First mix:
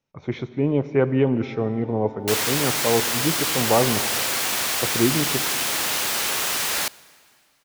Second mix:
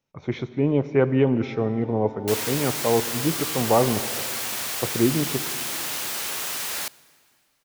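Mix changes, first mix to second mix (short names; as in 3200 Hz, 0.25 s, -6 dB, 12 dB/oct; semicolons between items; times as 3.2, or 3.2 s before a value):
second sound -7.0 dB; master: add high shelf 8000 Hz +4 dB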